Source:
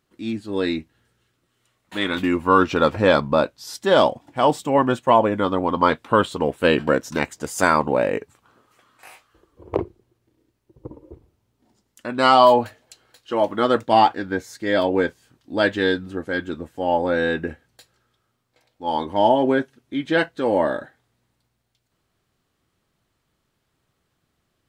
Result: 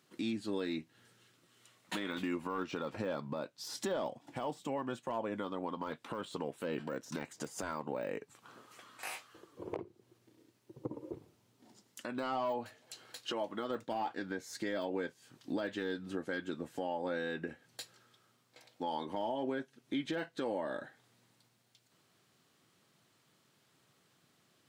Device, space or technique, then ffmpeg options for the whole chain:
broadcast voice chain: -af "highpass=f=120:w=0.5412,highpass=f=120:w=1.3066,deesser=0.95,acompressor=threshold=0.0141:ratio=3,equalizer=f=5800:t=o:w=2.5:g=4.5,alimiter=level_in=1.5:limit=0.0631:level=0:latency=1:release=211,volume=0.668,volume=1.12"

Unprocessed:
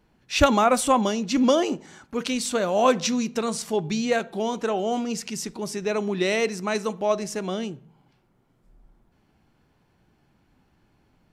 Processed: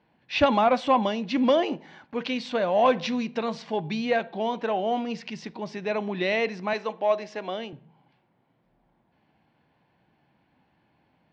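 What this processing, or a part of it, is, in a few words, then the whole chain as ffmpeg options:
overdrive pedal into a guitar cabinet: -filter_complex "[0:a]asplit=2[s0][s1];[s1]highpass=f=720:p=1,volume=3.98,asoftclip=type=tanh:threshold=0.631[s2];[s0][s2]amix=inputs=2:normalize=0,lowpass=f=1700:p=1,volume=0.501,highpass=76,equalizer=f=150:t=q:w=4:g=3,equalizer=f=400:t=q:w=4:g=-6,equalizer=f=1300:t=q:w=4:g=-9,lowpass=f=4500:w=0.5412,lowpass=f=4500:w=1.3066,asettb=1/sr,asplit=3[s3][s4][s5];[s3]atrim=end=6.734[s6];[s4]atrim=start=6.73:end=7.73,asetpts=PTS-STARTPTS,afade=t=in:d=0.004:c=qsin,afade=t=out:st=0.996:d=0.004:c=qsin,highpass=300[s7];[s5]atrim=start=7.726[s8];[s6][s7]acrossfade=d=0.004:c1=hsin:c2=qsin[s9];[s9][s8]acrossfade=d=0.004:c1=qsin:c2=hsin,volume=0.794"

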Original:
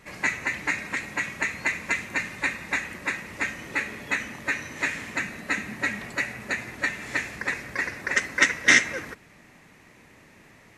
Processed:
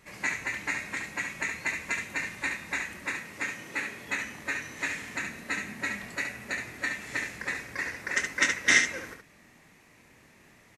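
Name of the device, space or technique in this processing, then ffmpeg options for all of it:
slapback doubling: -filter_complex "[0:a]asplit=3[s0][s1][s2];[s1]adelay=25,volume=0.355[s3];[s2]adelay=70,volume=0.501[s4];[s0][s3][s4]amix=inputs=3:normalize=0,highshelf=f=4400:g=5,asettb=1/sr,asplit=3[s5][s6][s7];[s5]atrim=end=3.214[s8];[s6]atrim=start=3.21:end=4.07,asetpts=PTS-STARTPTS,afade=t=in:d=0.004:c=qsin,afade=t=out:st=0.856:d=0.004:c=qsin,highpass=110[s9];[s7]atrim=start=4.066[s10];[s8][s9]acrossfade=d=0.004:c1=hsin:c2=qsin[s11];[s11][s10]acrossfade=d=0.004:c1=qsin:c2=hsin,volume=0.473"

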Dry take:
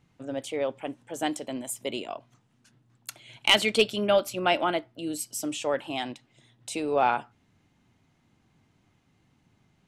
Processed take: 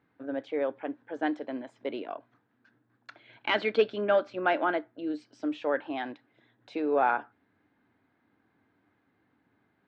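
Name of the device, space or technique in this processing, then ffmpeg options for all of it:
overdrive pedal into a guitar cabinet: -filter_complex "[0:a]asplit=2[s0][s1];[s1]highpass=f=720:p=1,volume=2,asoftclip=type=tanh:threshold=0.355[s2];[s0][s2]amix=inputs=2:normalize=0,lowpass=f=1300:p=1,volume=0.501,highpass=94,equalizer=f=150:t=q:w=4:g=-9,equalizer=f=290:t=q:w=4:g=7,equalizer=f=450:t=q:w=4:g=4,equalizer=f=1600:t=q:w=4:g=9,equalizer=f=2900:t=q:w=4:g=-6,lowpass=f=4300:w=0.5412,lowpass=f=4300:w=1.3066,volume=0.794"

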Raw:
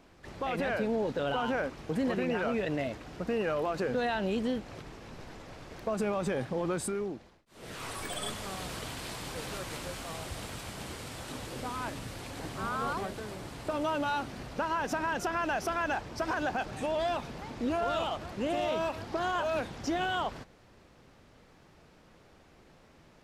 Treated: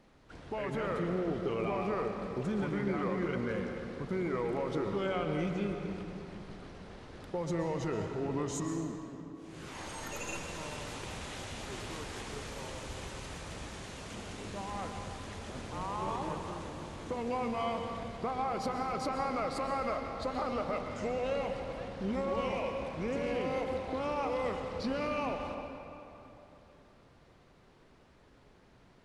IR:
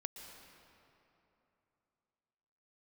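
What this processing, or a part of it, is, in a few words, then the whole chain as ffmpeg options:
slowed and reverbed: -filter_complex "[0:a]asetrate=35280,aresample=44100[s0];[1:a]atrim=start_sample=2205[s1];[s0][s1]afir=irnorm=-1:irlink=0"

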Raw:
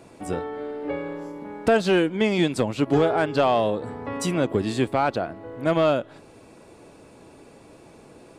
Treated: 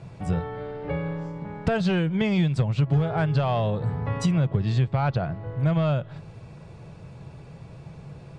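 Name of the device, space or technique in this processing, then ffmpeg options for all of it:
jukebox: -filter_complex "[0:a]lowpass=5400,lowshelf=f=200:t=q:w=3:g=10.5,acompressor=threshold=0.1:ratio=4,asettb=1/sr,asplit=3[s0][s1][s2];[s0]atrim=end=4.414[s3];[s1]atrim=start=4.41:end=5.24,asetpts=PTS-STARTPTS,afade=t=in:d=0.004:c=qsin,afade=t=out:st=0.826:d=0.004:c=qsin,lowpass=f=7100:w=0.5412,lowpass=f=7100:w=1.3066[s4];[s2]atrim=start=5.236[s5];[s3][s4]acrossfade=d=0.004:c1=hsin:c2=qsin[s6];[s6][s5]acrossfade=d=0.004:c1=qsin:c2=hsin"

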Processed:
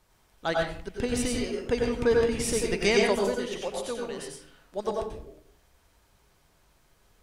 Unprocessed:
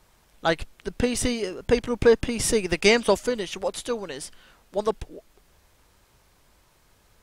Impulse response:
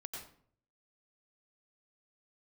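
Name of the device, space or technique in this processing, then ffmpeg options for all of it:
bathroom: -filter_complex "[1:a]atrim=start_sample=2205[s0];[0:a][s0]afir=irnorm=-1:irlink=0,volume=0.891"

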